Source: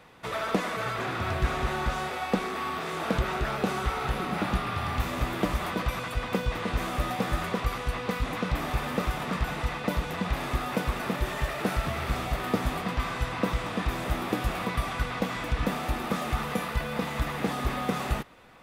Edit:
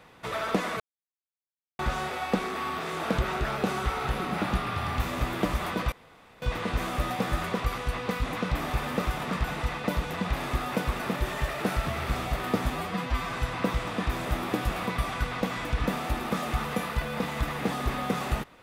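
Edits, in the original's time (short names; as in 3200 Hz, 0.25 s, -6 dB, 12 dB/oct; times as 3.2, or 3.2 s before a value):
0.8–1.79 mute
5.92–6.42 room tone
12.7–13.12 stretch 1.5×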